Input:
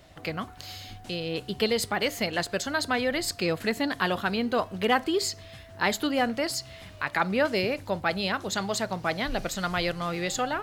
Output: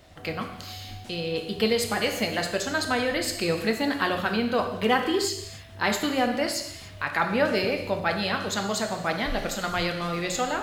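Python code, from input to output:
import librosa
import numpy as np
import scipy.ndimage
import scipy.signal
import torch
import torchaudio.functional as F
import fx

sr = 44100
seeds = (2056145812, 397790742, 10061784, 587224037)

y = fx.rev_gated(x, sr, seeds[0], gate_ms=330, shape='falling', drr_db=3.5)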